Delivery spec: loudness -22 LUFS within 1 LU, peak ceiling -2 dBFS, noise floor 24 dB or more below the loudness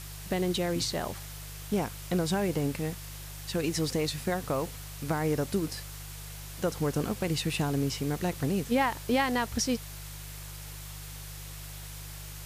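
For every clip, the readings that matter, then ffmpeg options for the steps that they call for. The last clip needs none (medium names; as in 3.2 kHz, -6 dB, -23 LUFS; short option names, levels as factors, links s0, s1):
hum 50 Hz; highest harmonic 150 Hz; hum level -41 dBFS; noise floor -42 dBFS; noise floor target -55 dBFS; loudness -31.0 LUFS; peak level -15.5 dBFS; loudness target -22.0 LUFS
-> -af "bandreject=f=50:t=h:w=4,bandreject=f=100:t=h:w=4,bandreject=f=150:t=h:w=4"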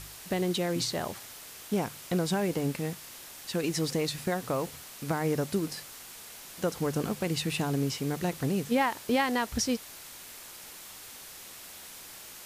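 hum not found; noise floor -47 dBFS; noise floor target -55 dBFS
-> -af "afftdn=nr=8:nf=-47"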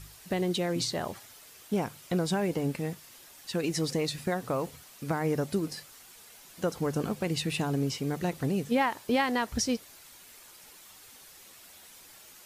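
noise floor -53 dBFS; noise floor target -55 dBFS
-> -af "afftdn=nr=6:nf=-53"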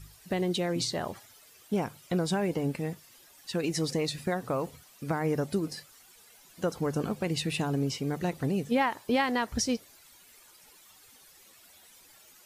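noise floor -57 dBFS; loudness -31.0 LUFS; peak level -15.5 dBFS; loudness target -22.0 LUFS
-> -af "volume=2.82"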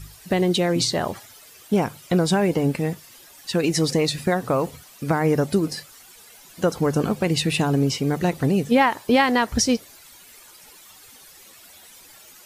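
loudness -22.0 LUFS; peak level -6.5 dBFS; noise floor -48 dBFS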